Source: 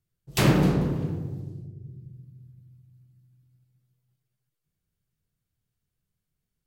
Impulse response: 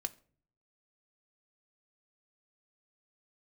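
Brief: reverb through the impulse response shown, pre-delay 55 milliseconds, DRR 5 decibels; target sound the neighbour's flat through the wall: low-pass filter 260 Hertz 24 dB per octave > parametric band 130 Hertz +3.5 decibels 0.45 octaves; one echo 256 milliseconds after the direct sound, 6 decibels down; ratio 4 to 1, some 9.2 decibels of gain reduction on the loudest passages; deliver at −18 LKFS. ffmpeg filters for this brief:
-filter_complex "[0:a]acompressor=threshold=-26dB:ratio=4,aecho=1:1:256:0.501,asplit=2[link_01][link_02];[1:a]atrim=start_sample=2205,adelay=55[link_03];[link_02][link_03]afir=irnorm=-1:irlink=0,volume=-4.5dB[link_04];[link_01][link_04]amix=inputs=2:normalize=0,lowpass=frequency=260:width=0.5412,lowpass=frequency=260:width=1.3066,equalizer=frequency=130:width_type=o:width=0.45:gain=3.5,volume=12.5dB"

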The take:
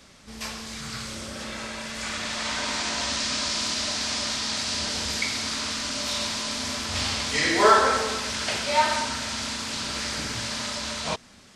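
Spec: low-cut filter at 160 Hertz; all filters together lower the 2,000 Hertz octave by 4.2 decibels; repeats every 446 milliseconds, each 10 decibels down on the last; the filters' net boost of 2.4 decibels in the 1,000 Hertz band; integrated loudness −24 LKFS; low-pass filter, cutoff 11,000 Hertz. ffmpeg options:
ffmpeg -i in.wav -af "highpass=160,lowpass=11000,equalizer=frequency=1000:width_type=o:gain=5,equalizer=frequency=2000:width_type=o:gain=-7,aecho=1:1:446|892|1338|1784:0.316|0.101|0.0324|0.0104,volume=1.5dB" out.wav

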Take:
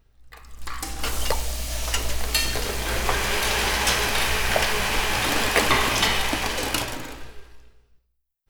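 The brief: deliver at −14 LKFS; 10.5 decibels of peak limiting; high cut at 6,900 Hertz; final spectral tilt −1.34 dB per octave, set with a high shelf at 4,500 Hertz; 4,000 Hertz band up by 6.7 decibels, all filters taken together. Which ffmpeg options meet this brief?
ffmpeg -i in.wav -af "lowpass=6900,equalizer=frequency=4000:width_type=o:gain=5.5,highshelf=frequency=4500:gain=7,volume=7.5dB,alimiter=limit=-4dB:level=0:latency=1" out.wav

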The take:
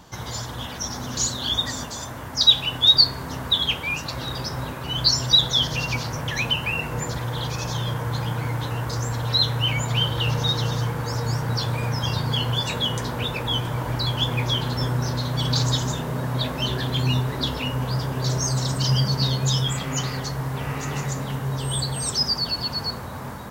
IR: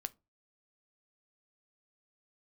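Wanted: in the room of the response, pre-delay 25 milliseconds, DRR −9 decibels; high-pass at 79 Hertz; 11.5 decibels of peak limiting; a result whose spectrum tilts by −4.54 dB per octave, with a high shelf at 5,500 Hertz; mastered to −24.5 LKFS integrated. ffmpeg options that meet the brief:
-filter_complex "[0:a]highpass=79,highshelf=frequency=5500:gain=-5,alimiter=limit=-17dB:level=0:latency=1,asplit=2[link_01][link_02];[1:a]atrim=start_sample=2205,adelay=25[link_03];[link_02][link_03]afir=irnorm=-1:irlink=0,volume=11dB[link_04];[link_01][link_04]amix=inputs=2:normalize=0,volume=-8dB"

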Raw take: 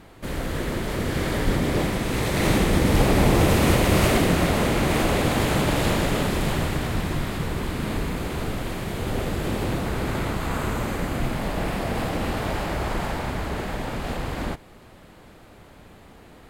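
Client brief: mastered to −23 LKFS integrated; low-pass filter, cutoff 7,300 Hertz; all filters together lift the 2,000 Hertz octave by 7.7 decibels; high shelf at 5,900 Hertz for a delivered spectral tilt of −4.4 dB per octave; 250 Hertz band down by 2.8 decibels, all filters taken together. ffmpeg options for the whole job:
ffmpeg -i in.wav -af "lowpass=7300,equalizer=frequency=250:width_type=o:gain=-4,equalizer=frequency=2000:width_type=o:gain=8.5,highshelf=frequency=5900:gain=7,volume=-0.5dB" out.wav

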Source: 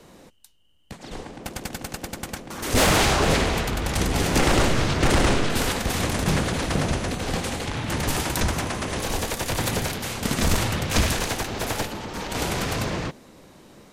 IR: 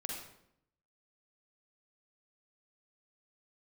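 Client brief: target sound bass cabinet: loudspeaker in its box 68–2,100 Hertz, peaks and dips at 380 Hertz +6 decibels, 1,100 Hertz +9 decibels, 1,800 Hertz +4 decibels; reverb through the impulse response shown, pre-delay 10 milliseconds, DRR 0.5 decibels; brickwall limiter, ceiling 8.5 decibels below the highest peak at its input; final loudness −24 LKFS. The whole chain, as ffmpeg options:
-filter_complex "[0:a]alimiter=limit=-21dB:level=0:latency=1,asplit=2[link_01][link_02];[1:a]atrim=start_sample=2205,adelay=10[link_03];[link_02][link_03]afir=irnorm=-1:irlink=0,volume=-0.5dB[link_04];[link_01][link_04]amix=inputs=2:normalize=0,highpass=frequency=68:width=0.5412,highpass=frequency=68:width=1.3066,equalizer=frequency=380:width_type=q:width=4:gain=6,equalizer=frequency=1100:width_type=q:width=4:gain=9,equalizer=frequency=1800:width_type=q:width=4:gain=4,lowpass=frequency=2100:width=0.5412,lowpass=frequency=2100:width=1.3066,volume=2.5dB"

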